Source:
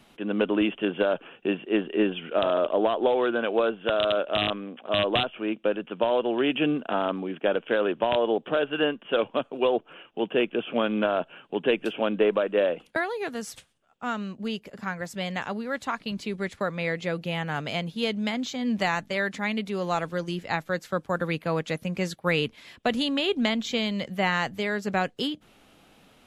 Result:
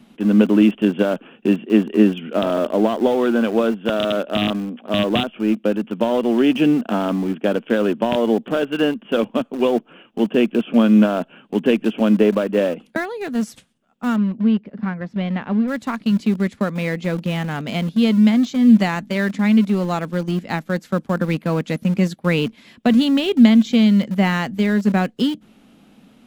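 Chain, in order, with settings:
parametric band 220 Hz +15 dB 0.93 octaves
in parallel at −11 dB: centre clipping without the shift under −22 dBFS
0:14.16–0:15.68: on the sum: high-frequency loss of the air 310 metres

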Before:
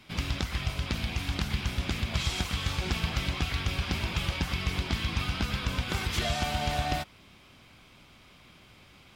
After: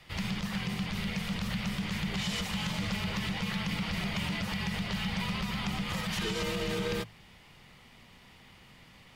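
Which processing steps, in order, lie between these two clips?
mains-hum notches 50/100/150 Hz
frequency shifter −260 Hz
brickwall limiter −23.5 dBFS, peak gain reduction 9.5 dB

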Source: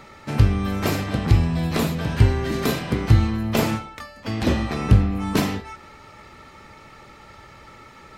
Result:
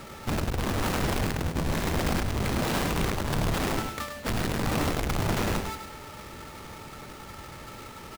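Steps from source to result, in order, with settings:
each half-wave held at its own peak
brickwall limiter −14 dBFS, peak gain reduction 36.5 dB
far-end echo of a speakerphone 260 ms, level −20 dB
wrap-around overflow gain 21 dB
single-tap delay 102 ms −7 dB
level −2.5 dB

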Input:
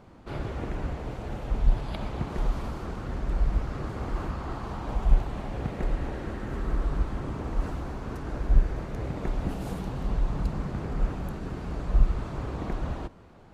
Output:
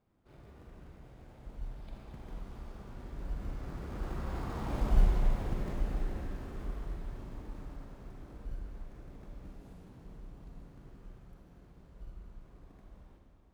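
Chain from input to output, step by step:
source passing by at 0:04.81, 11 m/s, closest 5.2 metres
in parallel at −8.5 dB: decimation without filtering 30×
on the sum: feedback delay with all-pass diffusion 894 ms, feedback 45%, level −11 dB
four-comb reverb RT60 2.2 s, combs from 32 ms, DRR 1 dB
level −5.5 dB

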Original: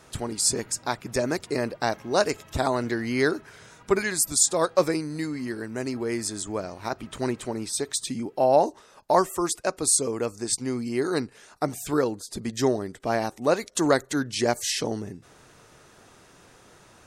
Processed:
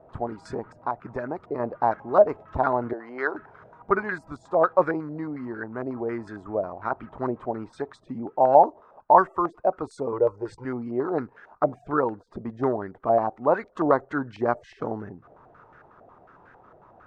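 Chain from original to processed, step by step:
0:00.57–0:01.60: downward compressor, threshold −26 dBFS, peak gain reduction 6 dB
0:02.93–0:03.35: high-pass filter 510 Hz 12 dB per octave
0:10.12–0:10.65: comb filter 2.1 ms, depth 81%
low-pass on a step sequencer 11 Hz 660–1,500 Hz
level −3 dB

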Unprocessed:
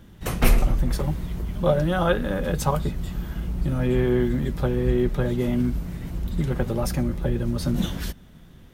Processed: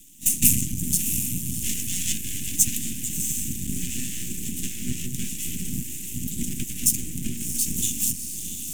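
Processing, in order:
lower of the sound and its delayed copy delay 1.1 ms
on a send: feedback delay with all-pass diffusion 688 ms, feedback 49%, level −8.5 dB
on the sum: gate on every frequency bin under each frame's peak −10 dB weak
in parallel at −2 dB: speech leveller within 3 dB 0.5 s
on the sum: half-wave rectification
Chebyshev band-stop filter 250–2,800 Hz, order 3
high shelf with overshoot 5,600 Hz +9.5 dB, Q 3
boost into a limiter +6 dB
level −1 dB

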